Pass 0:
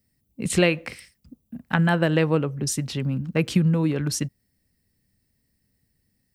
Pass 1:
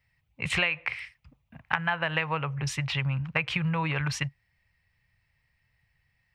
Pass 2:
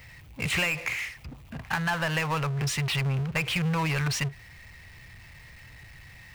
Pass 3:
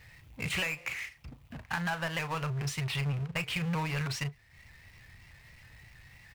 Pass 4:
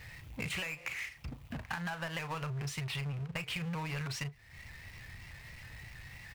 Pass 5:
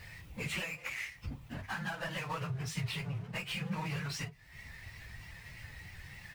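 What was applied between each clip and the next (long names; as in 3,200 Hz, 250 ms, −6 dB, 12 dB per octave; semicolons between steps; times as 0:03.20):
drawn EQ curve 140 Hz 0 dB, 230 Hz −19 dB, 400 Hz −11 dB, 940 Hz +10 dB, 1,500 Hz +7 dB, 2,400 Hz +13 dB, 4,400 Hz −3 dB, 9,900 Hz −16 dB; downward compressor 5 to 1, threshold −24 dBFS, peak gain reduction 13.5 dB
power curve on the samples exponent 0.5; level −8.5 dB
double-tracking delay 36 ms −10.5 dB; transient designer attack +1 dB, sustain −8 dB; pitch modulation by a square or saw wave saw up 3.2 Hz, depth 100 cents; level −6 dB
downward compressor 5 to 1, threshold −42 dBFS, peak gain reduction 12 dB; level +5 dB
random phases in long frames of 50 ms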